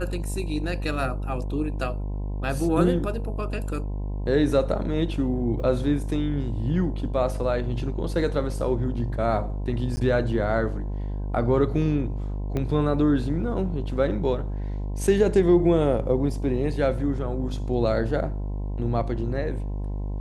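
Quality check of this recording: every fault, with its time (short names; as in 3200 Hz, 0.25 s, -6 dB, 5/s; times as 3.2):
buzz 50 Hz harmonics 21 -29 dBFS
5.6 gap 2.5 ms
9.96–9.97 gap 10 ms
12.57 pop -16 dBFS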